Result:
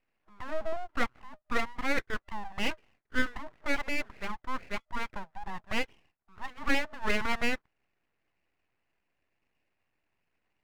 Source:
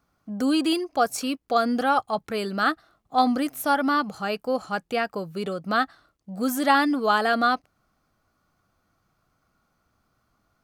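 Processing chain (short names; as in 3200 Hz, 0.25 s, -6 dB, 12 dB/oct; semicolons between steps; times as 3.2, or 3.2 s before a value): FFT band-pass 310–1700 Hz; full-wave rectifier; gain -4.5 dB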